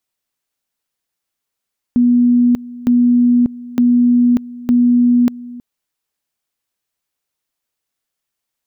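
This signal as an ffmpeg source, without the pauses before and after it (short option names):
-f lavfi -i "aevalsrc='pow(10,(-8-19.5*gte(mod(t,0.91),0.59))/20)*sin(2*PI*243*t)':d=3.64:s=44100"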